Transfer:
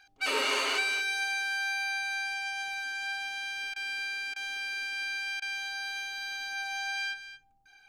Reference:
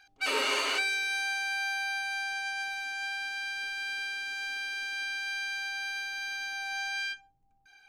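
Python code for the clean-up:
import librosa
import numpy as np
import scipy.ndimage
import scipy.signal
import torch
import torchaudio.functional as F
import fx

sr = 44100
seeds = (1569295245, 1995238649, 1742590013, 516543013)

y = fx.fix_interpolate(x, sr, at_s=(3.74, 4.34, 5.4), length_ms=19.0)
y = fx.fix_echo_inverse(y, sr, delay_ms=227, level_db=-12.0)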